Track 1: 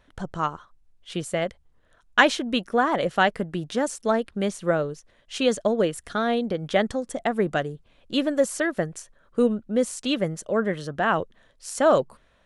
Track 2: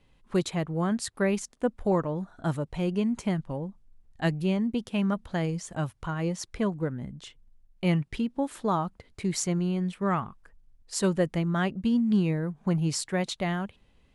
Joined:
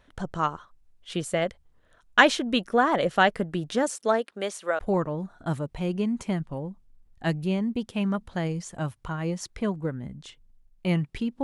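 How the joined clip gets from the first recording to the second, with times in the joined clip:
track 1
3.82–4.79 s: high-pass 190 Hz -> 710 Hz
4.79 s: go over to track 2 from 1.77 s

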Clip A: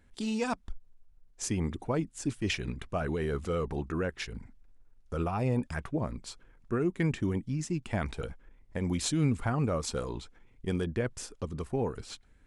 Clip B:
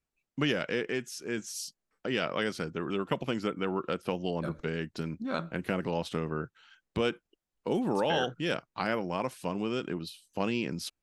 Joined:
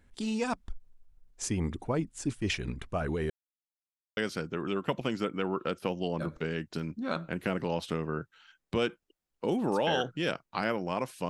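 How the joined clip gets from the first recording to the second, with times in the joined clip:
clip A
3.30–4.17 s: mute
4.17 s: go over to clip B from 2.40 s

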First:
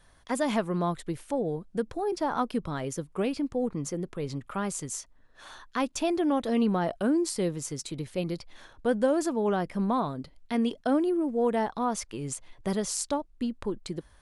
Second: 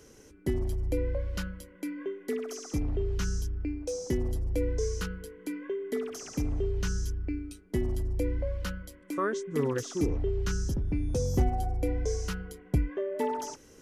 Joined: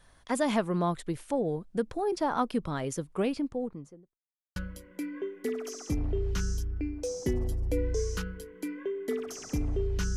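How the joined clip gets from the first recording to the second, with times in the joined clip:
first
3.17–4.18 s: studio fade out
4.18–4.56 s: mute
4.56 s: go over to second from 1.40 s

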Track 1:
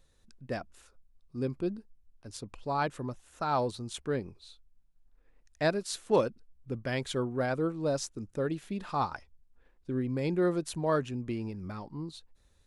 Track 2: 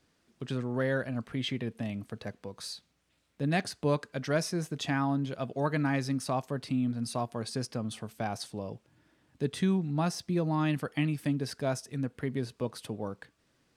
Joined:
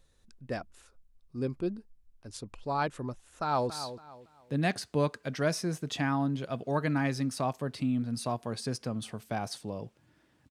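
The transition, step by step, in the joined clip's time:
track 1
3.26–3.70 s: echo throw 280 ms, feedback 30%, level -11.5 dB
3.70 s: go over to track 2 from 2.59 s

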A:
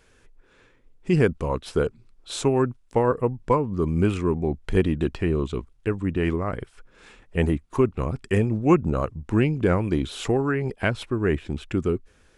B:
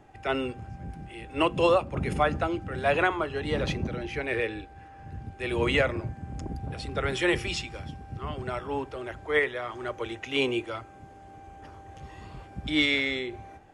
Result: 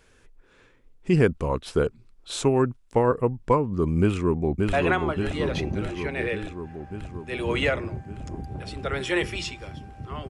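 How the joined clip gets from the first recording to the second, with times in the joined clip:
A
4.00–4.73 s: echo throw 580 ms, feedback 70%, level -3.5 dB
4.73 s: go over to B from 2.85 s

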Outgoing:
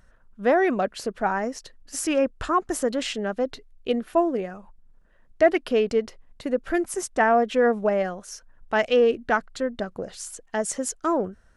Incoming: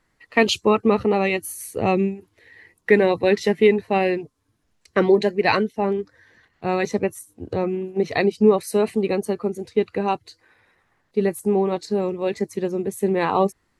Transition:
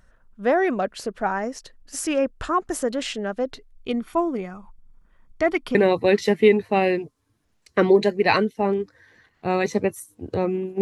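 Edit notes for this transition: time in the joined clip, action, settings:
outgoing
3.75–5.75 s: comb 0.9 ms, depth 51%
5.75 s: go over to incoming from 2.94 s

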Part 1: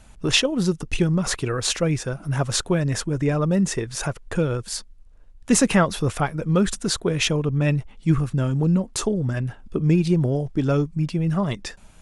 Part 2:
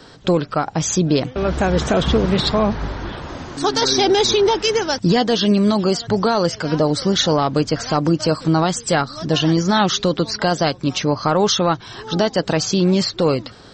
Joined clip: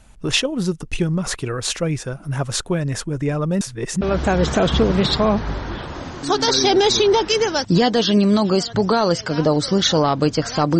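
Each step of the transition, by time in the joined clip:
part 1
3.61–4.01 s: reverse
4.01 s: go over to part 2 from 1.35 s

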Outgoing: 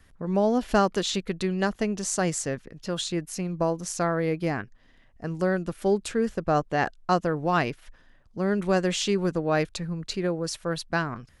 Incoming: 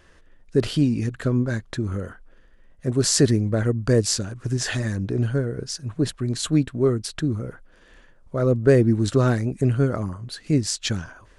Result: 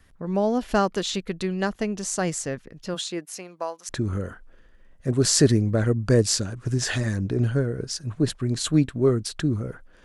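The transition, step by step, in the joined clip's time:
outgoing
2.94–3.89 s: high-pass 170 Hz -> 1.2 kHz
3.89 s: go over to incoming from 1.68 s

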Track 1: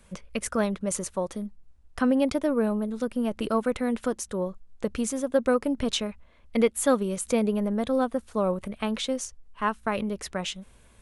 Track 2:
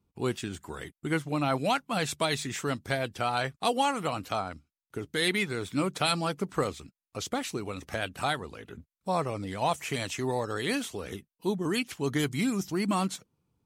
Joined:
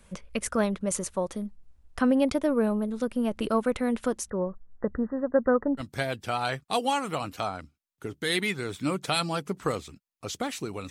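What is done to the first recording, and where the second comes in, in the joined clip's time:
track 1
4.30–5.83 s: brick-wall FIR low-pass 2 kHz
5.80 s: go over to track 2 from 2.72 s, crossfade 0.06 s

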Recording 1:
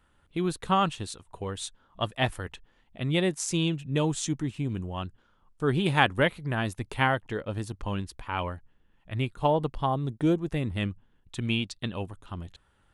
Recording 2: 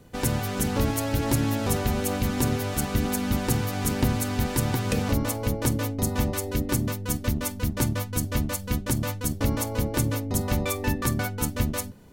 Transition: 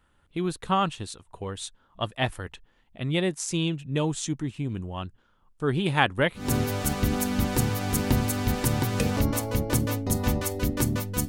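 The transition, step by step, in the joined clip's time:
recording 1
6.44 s: go over to recording 2 from 2.36 s, crossfade 0.20 s

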